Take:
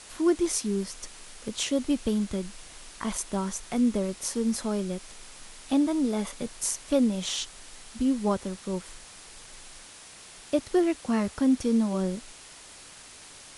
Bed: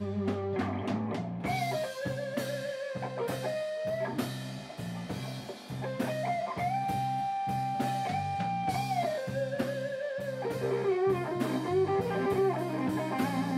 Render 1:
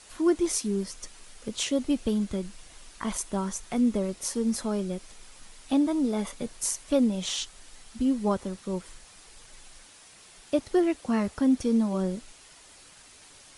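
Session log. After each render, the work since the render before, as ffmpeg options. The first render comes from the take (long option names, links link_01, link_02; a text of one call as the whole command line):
ffmpeg -i in.wav -af "afftdn=noise_reduction=6:noise_floor=-48" out.wav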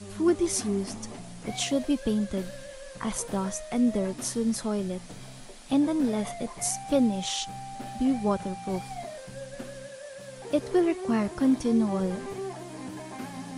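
ffmpeg -i in.wav -i bed.wav -filter_complex "[1:a]volume=-8dB[link_01];[0:a][link_01]amix=inputs=2:normalize=0" out.wav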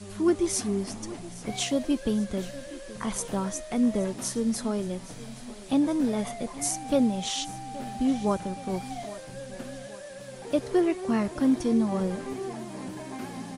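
ffmpeg -i in.wav -af "aecho=1:1:822|1644|2466|3288|4110:0.126|0.0718|0.0409|0.0233|0.0133" out.wav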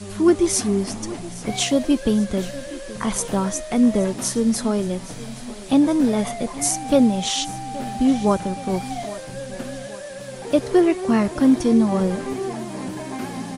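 ffmpeg -i in.wav -af "volume=7.5dB" out.wav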